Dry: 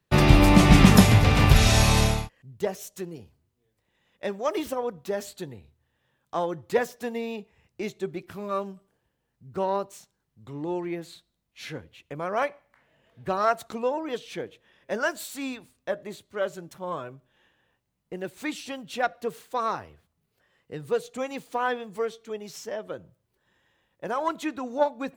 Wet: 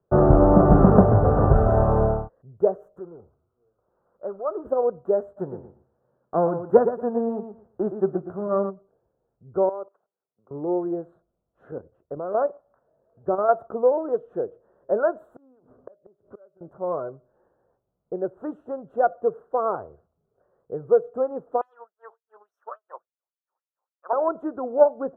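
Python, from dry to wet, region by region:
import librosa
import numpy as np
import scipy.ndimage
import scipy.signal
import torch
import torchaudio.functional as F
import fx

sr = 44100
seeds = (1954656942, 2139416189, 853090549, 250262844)

y = fx.chain(x, sr, fx.law_mismatch(coded='mu'),
    fx.ladder_lowpass(hz=1500.0, resonance_pct=60), at=(2.99, 4.65))
y = fx.envelope_flatten(y, sr, power=0.6, at=(5.36, 8.69), fade=0.02)
y = fx.peak_eq(y, sr, hz=210.0, db=5.5, octaves=1.2, at=(5.36, 8.69), fade=0.02)
y = fx.echo_feedback(y, sr, ms=117, feedback_pct=19, wet_db=-9, at=(5.36, 8.69), fade=0.02)
y = fx.chain(y, sr, fx.median_filter(points=9),
    fx.level_steps(step_db=18),
    fx.weighting(curve='A'), at=(9.69, 10.51))
y = fx.chain(y, sr, fx.lowpass(hz=3400.0, slope=12),
    fx.dynamic_eq(hz=260.0, q=1.2, threshold_db=-42.0, ratio=4.0, max_db=4),
    fx.level_steps(step_db=9), at=(11.71, 13.49))
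y = fx.chain(y, sr, fx.gate_flip(shuts_db=-33.0, range_db=-31),
    fx.band_squash(depth_pct=100), at=(15.36, 16.61))
y = fx.chain(y, sr, fx.lower_of_two(delay_ms=0.33),
    fx.filter_lfo_highpass(shape='sine', hz=3.5, low_hz=880.0, high_hz=5400.0, q=6.0),
    fx.upward_expand(threshold_db=-53.0, expansion=1.5), at=(21.61, 24.13))
y = scipy.signal.sosfilt(scipy.signal.ellip(4, 1.0, 40, 1400.0, 'lowpass', fs=sr, output='sos'), y)
y = fx.band_shelf(y, sr, hz=510.0, db=8.5, octaves=1.2)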